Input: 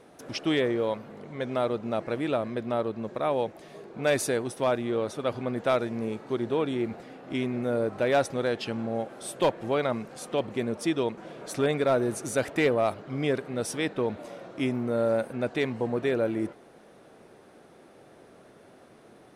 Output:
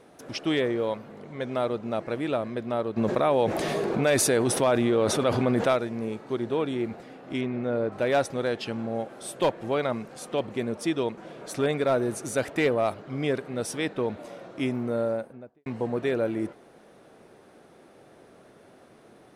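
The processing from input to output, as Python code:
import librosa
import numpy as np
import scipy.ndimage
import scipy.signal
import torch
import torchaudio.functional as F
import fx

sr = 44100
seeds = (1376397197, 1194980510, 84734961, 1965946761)

y = fx.env_flatten(x, sr, amount_pct=70, at=(2.96, 5.72), fade=0.02)
y = fx.lowpass(y, sr, hz=4000.0, slope=12, at=(7.41, 7.92))
y = fx.studio_fade_out(y, sr, start_s=14.83, length_s=0.83)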